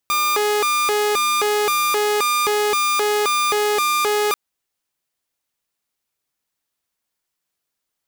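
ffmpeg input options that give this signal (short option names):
-f lavfi -i "aevalsrc='0.2*(2*mod((809*t+391/1.9*(0.5-abs(mod(1.9*t,1)-0.5))),1)-1)':d=4.24:s=44100"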